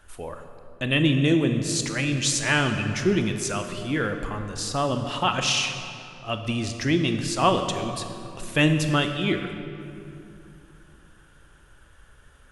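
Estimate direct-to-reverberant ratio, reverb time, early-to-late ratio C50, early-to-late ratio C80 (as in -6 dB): 6.0 dB, 2.7 s, 7.0 dB, 8.0 dB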